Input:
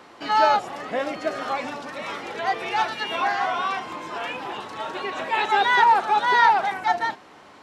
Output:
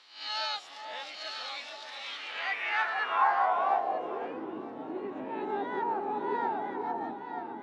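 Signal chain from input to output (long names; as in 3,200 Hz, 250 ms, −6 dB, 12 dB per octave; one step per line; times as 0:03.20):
peak hold with a rise ahead of every peak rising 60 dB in 0.46 s
delay that swaps between a low-pass and a high-pass 472 ms, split 950 Hz, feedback 63%, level −3 dB
band-pass filter sweep 4,000 Hz → 280 Hz, 0:02.00–0:04.59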